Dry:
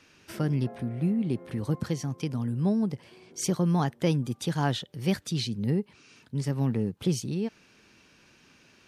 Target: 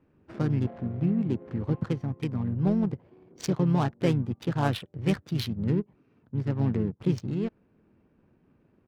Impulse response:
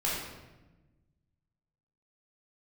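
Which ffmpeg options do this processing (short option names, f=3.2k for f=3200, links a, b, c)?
-filter_complex "[0:a]adynamicsmooth=sensitivity=6.5:basefreq=560,asplit=2[a][b];[b]asetrate=35002,aresample=44100,atempo=1.25992,volume=-7dB[c];[a][c]amix=inputs=2:normalize=0"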